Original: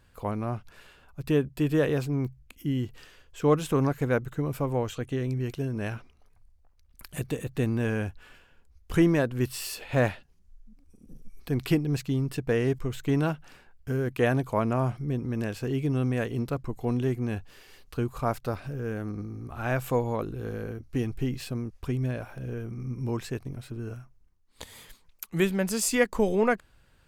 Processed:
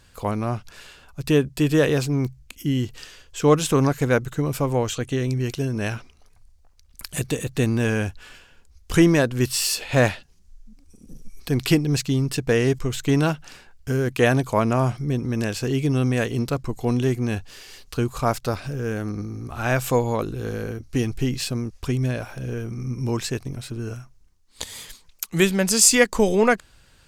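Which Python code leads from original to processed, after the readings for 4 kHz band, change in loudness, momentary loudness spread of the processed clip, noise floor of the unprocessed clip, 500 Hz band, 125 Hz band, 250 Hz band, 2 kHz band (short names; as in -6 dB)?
+12.5 dB, +6.5 dB, 14 LU, -61 dBFS, +5.5 dB, +5.5 dB, +5.5 dB, +7.5 dB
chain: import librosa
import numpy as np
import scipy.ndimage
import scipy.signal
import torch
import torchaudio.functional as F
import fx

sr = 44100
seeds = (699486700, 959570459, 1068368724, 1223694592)

y = fx.peak_eq(x, sr, hz=6100.0, db=9.5, octaves=1.9)
y = y * librosa.db_to_amplitude(5.5)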